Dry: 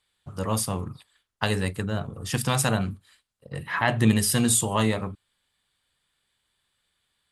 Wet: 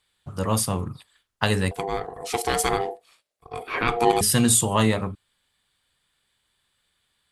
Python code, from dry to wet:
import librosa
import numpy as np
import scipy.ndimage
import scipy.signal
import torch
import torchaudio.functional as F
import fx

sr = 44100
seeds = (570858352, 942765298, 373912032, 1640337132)

y = fx.ring_mod(x, sr, carrier_hz=590.0, at=(1.71, 4.21))
y = y * 10.0 ** (3.0 / 20.0)